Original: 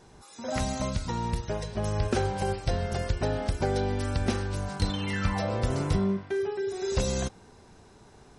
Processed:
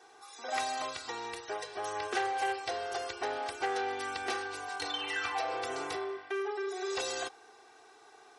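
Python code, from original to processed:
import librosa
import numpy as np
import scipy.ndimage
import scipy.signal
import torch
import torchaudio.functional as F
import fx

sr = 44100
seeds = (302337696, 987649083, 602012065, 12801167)

y = scipy.signal.sosfilt(scipy.signal.butter(2, 670.0, 'highpass', fs=sr, output='sos'), x)
y = fx.high_shelf(y, sr, hz=4600.0, db=-7.0)
y = y + 0.98 * np.pad(y, (int(2.6 * sr / 1000.0), 0))[:len(y)]
y = fx.transformer_sat(y, sr, knee_hz=2100.0)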